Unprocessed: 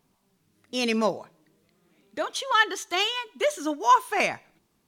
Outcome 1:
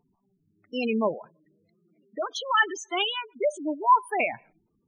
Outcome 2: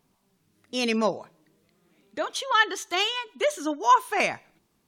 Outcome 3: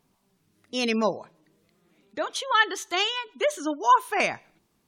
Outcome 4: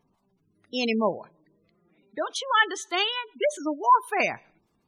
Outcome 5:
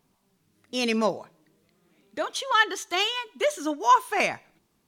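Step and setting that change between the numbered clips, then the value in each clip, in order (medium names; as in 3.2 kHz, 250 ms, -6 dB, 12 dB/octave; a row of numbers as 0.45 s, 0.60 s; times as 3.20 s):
spectral gate, under each frame's peak: -10 dB, -45 dB, -35 dB, -20 dB, -60 dB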